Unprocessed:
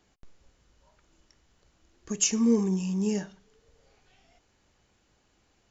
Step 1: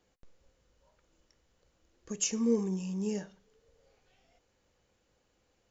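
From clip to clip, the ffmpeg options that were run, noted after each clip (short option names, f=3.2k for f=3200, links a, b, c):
-af "equalizer=f=510:w=5.5:g=10.5,volume=-6.5dB"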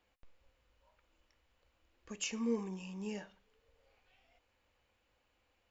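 -af "equalizer=f=160:t=o:w=0.67:g=-11,equalizer=f=400:t=o:w=0.67:g=-6,equalizer=f=1k:t=o:w=0.67:g=3,equalizer=f=2.5k:t=o:w=0.67:g=6,equalizer=f=6.3k:t=o:w=0.67:g=-9,volume=-2.5dB"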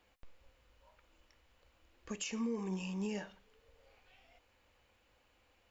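-af "alimiter=level_in=11dB:limit=-24dB:level=0:latency=1:release=198,volume=-11dB,volume=5.5dB"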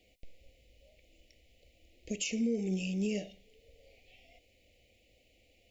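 -af "asuperstop=centerf=1200:order=12:qfactor=0.91,volume=5.5dB"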